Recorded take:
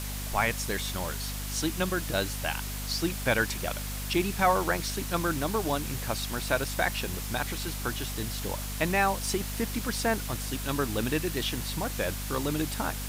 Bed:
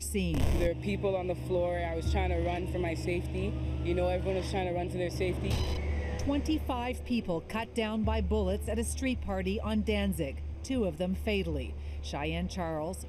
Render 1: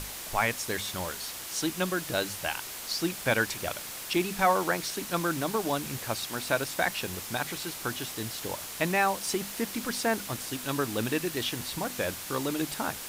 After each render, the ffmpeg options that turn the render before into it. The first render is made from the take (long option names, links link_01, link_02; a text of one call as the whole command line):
ffmpeg -i in.wav -af "bandreject=frequency=50:width_type=h:width=6,bandreject=frequency=100:width_type=h:width=6,bandreject=frequency=150:width_type=h:width=6,bandreject=frequency=200:width_type=h:width=6,bandreject=frequency=250:width_type=h:width=6" out.wav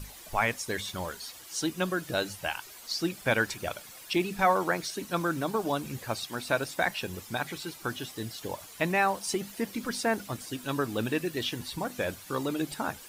ffmpeg -i in.wav -af "afftdn=noise_reduction=12:noise_floor=-40" out.wav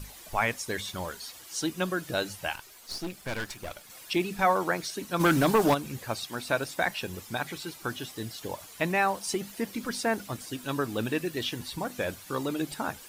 ffmpeg -i in.wav -filter_complex "[0:a]asettb=1/sr,asplit=3[link_01][link_02][link_03];[link_01]atrim=end=2.554[link_04];[link_02]atrim=start=2.55:end=3.9,asetpts=PTS-STARTPTS,afade=type=in:duration=0.004:curve=qsin,afade=type=out:start_time=1.346:duration=0.004:curve=qsin,aeval=exprs='(tanh(31.6*val(0)+0.7)-tanh(0.7))/31.6':channel_layout=same[link_05];[link_03]atrim=start=3.896[link_06];[link_04][link_05]acrossfade=duration=0.004:curve1=hsin:curve2=qsin[link_07];[link_07][link_06]acrossfade=duration=0.004:curve1=qsin:curve2=hsin,asplit=3[link_08][link_09][link_10];[link_08]afade=type=out:start_time=5.19:duration=0.02[link_11];[link_09]aeval=exprs='0.15*sin(PI/2*2*val(0)/0.15)':channel_layout=same,afade=type=in:start_time=5.19:duration=0.02,afade=type=out:start_time=5.73:duration=0.02[link_12];[link_10]afade=type=in:start_time=5.73:duration=0.02[link_13];[link_11][link_12][link_13]amix=inputs=3:normalize=0" out.wav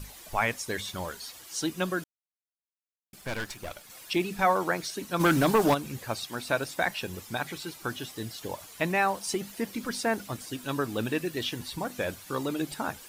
ffmpeg -i in.wav -filter_complex "[0:a]asplit=3[link_01][link_02][link_03];[link_01]atrim=end=2.04,asetpts=PTS-STARTPTS,afade=type=out:start_time=2.036:duration=0.004:curve=hsin[link_04];[link_02]atrim=start=2.04:end=3.13,asetpts=PTS-STARTPTS,volume=0[link_05];[link_03]atrim=start=3.13,asetpts=PTS-STARTPTS,afade=type=in:duration=0.004:curve=hsin[link_06];[link_04][link_05][link_06]concat=n=3:v=0:a=1" out.wav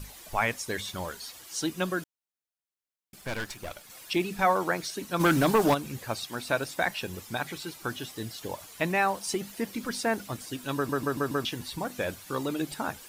ffmpeg -i in.wav -filter_complex "[0:a]asplit=6[link_01][link_02][link_03][link_04][link_05][link_06];[link_01]atrim=end=10.892[link_07];[link_02]atrim=start=10.748:end=10.892[link_08];[link_03]atrim=start=10.748:end=10.892[link_09];[link_04]atrim=start=10.748:end=10.892[link_10];[link_05]atrim=start=10.748:end=10.892[link_11];[link_06]atrim=start=11.448[link_12];[link_07][link_08]acrossfade=duration=0.004:curve1=hsin:curve2=hsin[link_13];[link_13][link_09]acrossfade=duration=0.004:curve1=hsin:curve2=hsin[link_14];[link_14][link_10]acrossfade=duration=0.004:curve1=hsin:curve2=hsin[link_15];[link_15][link_11]acrossfade=duration=0.004:curve1=hsin:curve2=hsin[link_16];[link_16][link_12]acrossfade=duration=0.004:curve1=hsin:curve2=hsin" out.wav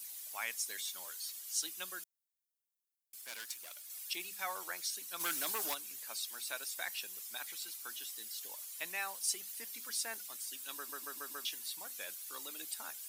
ffmpeg -i in.wav -af "highpass=frequency=170:width=0.5412,highpass=frequency=170:width=1.3066,aderivative" out.wav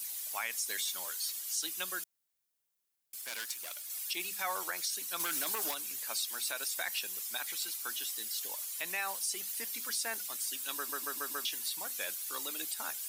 ffmpeg -i in.wav -af "acontrast=73,alimiter=limit=-24dB:level=0:latency=1:release=73" out.wav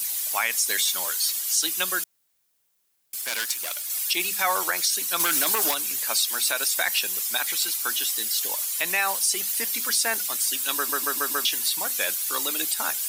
ffmpeg -i in.wav -af "volume=12dB" out.wav